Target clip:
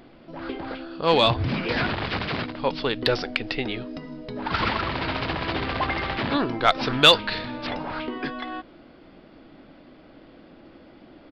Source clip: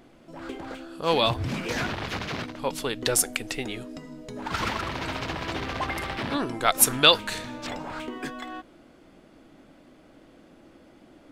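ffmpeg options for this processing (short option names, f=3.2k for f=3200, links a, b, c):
-filter_complex "[0:a]aresample=11025,aresample=44100,asplit=2[a][b];[b]acontrast=86,volume=-1dB[c];[a][c]amix=inputs=2:normalize=0,volume=-5.5dB"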